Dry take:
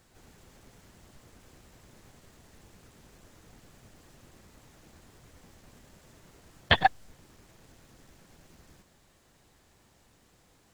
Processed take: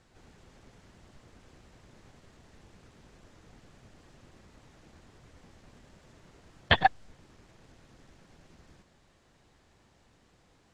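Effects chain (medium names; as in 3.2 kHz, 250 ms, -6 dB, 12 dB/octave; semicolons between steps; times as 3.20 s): distance through air 69 m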